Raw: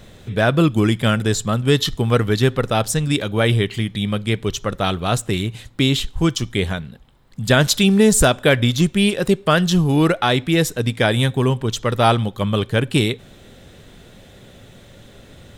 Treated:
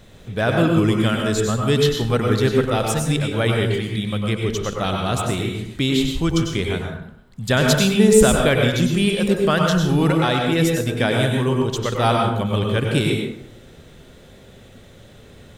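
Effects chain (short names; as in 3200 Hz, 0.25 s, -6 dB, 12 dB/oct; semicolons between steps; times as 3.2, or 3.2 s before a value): plate-style reverb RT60 0.76 s, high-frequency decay 0.55×, pre-delay 85 ms, DRR 0.5 dB; gain -4 dB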